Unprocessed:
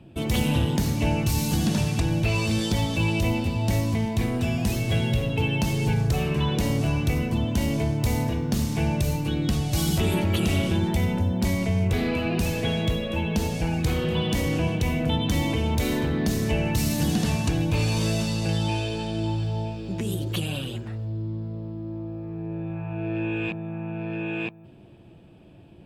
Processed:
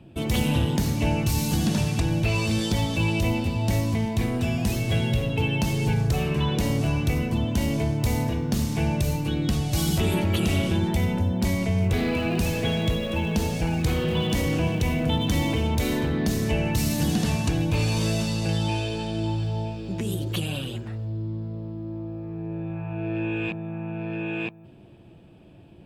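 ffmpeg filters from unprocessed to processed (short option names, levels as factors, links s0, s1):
-filter_complex "[0:a]asettb=1/sr,asplit=3[s0][s1][s2];[s0]atrim=end=11.784[s3];[s1]atrim=start=11.78:end=15.67,asetpts=PTS-STARTPTS,afade=t=in:d=0.004:c=qsin,afade=t=out:st=3.886:d=0.004:c=qsin,aeval=exprs='val(0)+0.5*0.00944*sgn(val(0))':c=same[s4];[s2]atrim=start=15.666[s5];[s3][s4]acrossfade=d=0.004:c1=hsin:c2=qsin[s6];[s6][s5]acrossfade=d=0.004:c1=qsin:c2=hsin"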